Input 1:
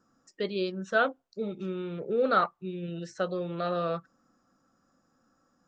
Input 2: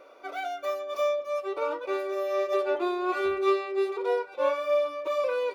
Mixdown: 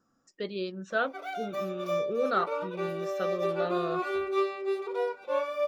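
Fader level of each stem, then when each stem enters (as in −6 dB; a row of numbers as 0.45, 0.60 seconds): −3.5, −3.5 decibels; 0.00, 0.90 seconds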